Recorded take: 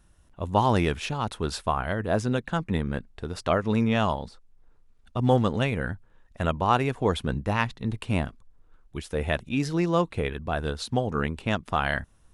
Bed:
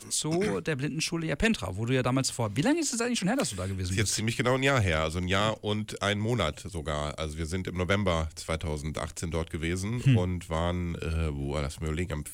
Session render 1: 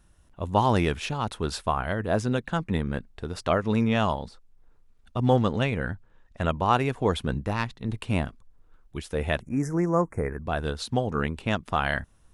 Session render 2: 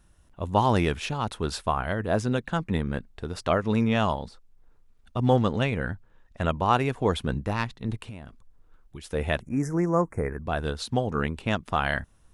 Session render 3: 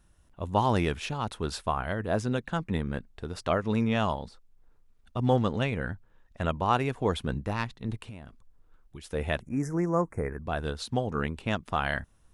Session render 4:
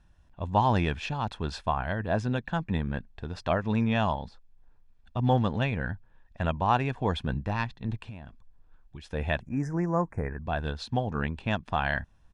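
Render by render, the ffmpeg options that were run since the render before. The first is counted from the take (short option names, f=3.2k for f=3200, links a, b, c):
-filter_complex "[0:a]asettb=1/sr,asplit=3[a][b][c];[a]atrim=end=5.214[d];[b]atrim=start=5.21:end=6.5,asetpts=PTS-STARTPTS,afade=t=in:d=0.004:c=qsin,afade=t=out:st=1.286:d=0.004:c=qsin,lowpass=8.1k[e];[c]atrim=start=6.496[f];[d][e]acrossfade=d=0.004:c1=hsin:c2=qsin[g];[g][f]acrossfade=d=0.004:c1=qsin:c2=hsin,asettb=1/sr,asplit=3[h][i][j];[h]atrim=end=7.484[k];[i]atrim=start=7.48:end=7.89,asetpts=PTS-STARTPTS,afade=t=in:d=0.004:c=qsin,afade=t=out:st=0.406:d=0.004:c=qsin,aeval=exprs='(tanh(3.98*val(0)+0.6)-tanh(0.6))/3.98':c=same[l];[j]atrim=start=7.886[m];[k][l]acrossfade=d=0.004:c1=hsin:c2=qsin[n];[n][m]acrossfade=d=0.004:c1=qsin:c2=hsin,asettb=1/sr,asplit=3[o][p][q];[o]atrim=end=9.424[r];[p]atrim=start=9.42:end=10.47,asetpts=PTS-STARTPTS,afade=t=in:d=0.004:c=qsin,afade=t=out:st=1.046:d=0.004:c=qsin,asuperstop=centerf=3500:order=8:qfactor=0.89[s];[q]atrim=start=10.466[t];[r][s]acrossfade=d=0.004:c1=hsin:c2=qsin[u];[u][t]acrossfade=d=0.004:c1=qsin:c2=hsin"
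-filter_complex "[0:a]asplit=3[a][b][c];[a]afade=t=out:st=7.96:d=0.02[d];[b]acompressor=threshold=-35dB:ratio=10:attack=3.2:release=140:knee=1:detection=peak,afade=t=in:st=7.96:d=0.02,afade=t=out:st=9.03:d=0.02[e];[c]afade=t=in:st=9.03:d=0.02[f];[d][e][f]amix=inputs=3:normalize=0"
-af "volume=-3dB"
-af "lowpass=4.8k,aecho=1:1:1.2:0.36"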